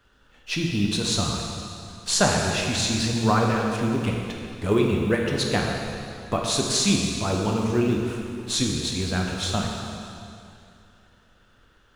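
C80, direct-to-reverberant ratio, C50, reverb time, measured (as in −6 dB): 2.5 dB, −0.5 dB, 1.5 dB, 2.6 s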